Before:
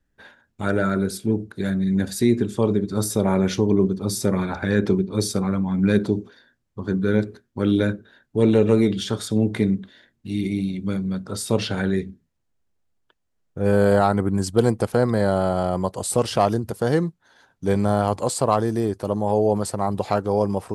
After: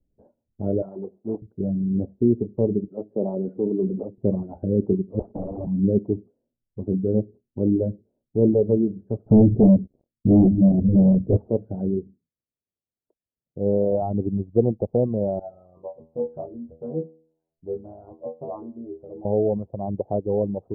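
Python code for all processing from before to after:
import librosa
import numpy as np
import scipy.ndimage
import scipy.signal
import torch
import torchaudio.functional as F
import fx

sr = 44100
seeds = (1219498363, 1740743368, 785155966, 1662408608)

y = fx.chain(x, sr, fx.block_float(bits=3),
    fx.highpass(hz=500.0, slope=6), at=(0.82, 1.42))
y = fx.chain(y, sr, fx.highpass(hz=140.0, slope=24),
    fx.low_shelf(hz=210.0, db=-10.5),
    fx.sustainer(db_per_s=25.0), at=(2.88, 4.18))
y = fx.chain(y, sr, fx.highpass(hz=130.0, slope=12),
    fx.overflow_wrap(gain_db=21.0),
    fx.band_squash(depth_pct=70), at=(5.19, 5.67))
y = fx.chain(y, sr, fx.leveller(passes=5),
    fx.filter_lfo_lowpass(shape='sine', hz=2.9, low_hz=240.0, high_hz=1800.0, q=0.7), at=(9.26, 11.5))
y = fx.chain(y, sr, fx.highpass(hz=150.0, slope=6),
    fx.high_shelf(hz=2800.0, db=-10.0), at=(12.07, 14.02))
y = fx.chain(y, sr, fx.peak_eq(hz=2200.0, db=12.0, octaves=2.8),
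    fx.stiff_resonator(f0_hz=78.0, decay_s=0.6, stiffness=0.002), at=(15.39, 19.25))
y = scipy.signal.sosfilt(scipy.signal.butter(6, 660.0, 'lowpass', fs=sr, output='sos'), y)
y = fx.dereverb_blind(y, sr, rt60_s=1.2)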